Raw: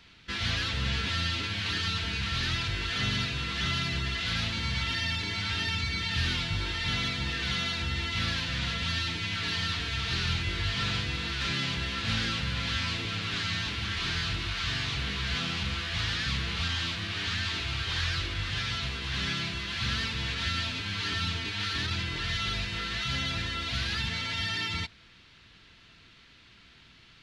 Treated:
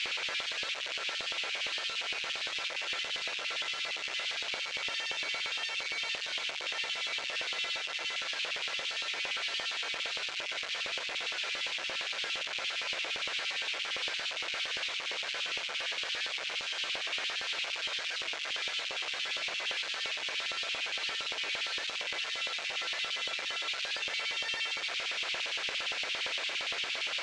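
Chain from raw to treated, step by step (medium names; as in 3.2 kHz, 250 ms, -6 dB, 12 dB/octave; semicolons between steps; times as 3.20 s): one-bit comparator; cabinet simulation 120–6400 Hz, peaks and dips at 230 Hz -9 dB, 1.5 kHz +3 dB, 2.3 kHz +5 dB; LFO high-pass square 8.7 Hz 550–2800 Hz; trim -6 dB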